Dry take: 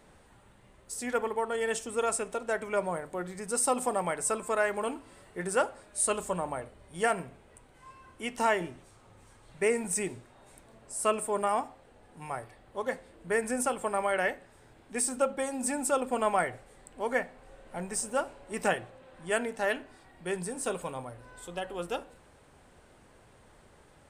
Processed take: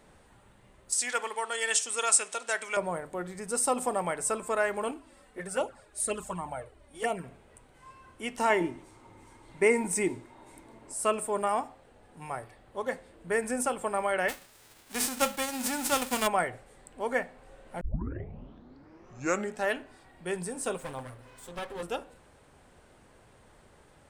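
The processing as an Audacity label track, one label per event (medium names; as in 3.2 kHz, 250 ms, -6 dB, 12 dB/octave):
0.920000	2.770000	frequency weighting ITU-R 468
4.910000	7.240000	touch-sensitive flanger delay at rest 4.4 ms, full sweep at -22.5 dBFS
8.500000	10.940000	small resonant body resonances 310/920/2100 Hz, height 11 dB, ringing for 30 ms
14.280000	16.260000	formants flattened exponent 0.3
17.810000	17.810000	tape start 1.85 s
20.780000	21.830000	comb filter that takes the minimum delay 7.6 ms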